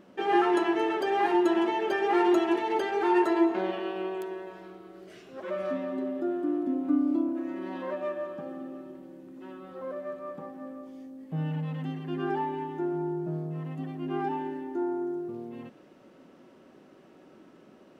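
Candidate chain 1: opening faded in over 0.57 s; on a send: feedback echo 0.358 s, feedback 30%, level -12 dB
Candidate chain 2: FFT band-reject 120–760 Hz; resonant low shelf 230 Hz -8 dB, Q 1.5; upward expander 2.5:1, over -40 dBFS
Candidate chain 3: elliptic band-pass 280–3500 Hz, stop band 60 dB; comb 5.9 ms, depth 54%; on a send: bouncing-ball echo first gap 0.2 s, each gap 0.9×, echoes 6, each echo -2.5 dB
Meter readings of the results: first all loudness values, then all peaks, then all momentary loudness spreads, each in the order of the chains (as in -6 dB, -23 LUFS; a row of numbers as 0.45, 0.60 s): -29.0, -36.0, -24.0 LUFS; -13.0, -17.0, -8.0 dBFS; 19, 18, 21 LU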